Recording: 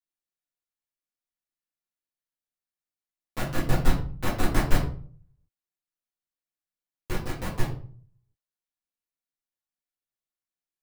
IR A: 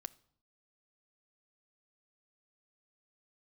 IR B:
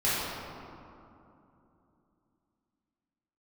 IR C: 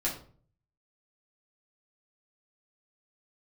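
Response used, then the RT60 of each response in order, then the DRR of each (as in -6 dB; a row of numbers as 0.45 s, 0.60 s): C; 0.60 s, 2.9 s, 0.45 s; 13.5 dB, -11.0 dB, -6.0 dB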